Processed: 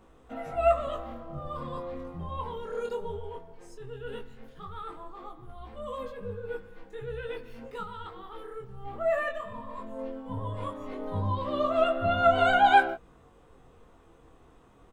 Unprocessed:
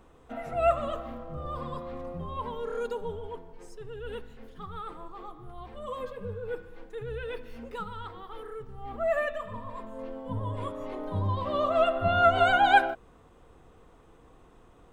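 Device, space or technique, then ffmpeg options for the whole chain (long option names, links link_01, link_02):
double-tracked vocal: -filter_complex "[0:a]asplit=2[link_01][link_02];[link_02]adelay=15,volume=-12dB[link_03];[link_01][link_03]amix=inputs=2:normalize=0,flanger=delay=18.5:depth=6.2:speed=0.17,volume=2dB"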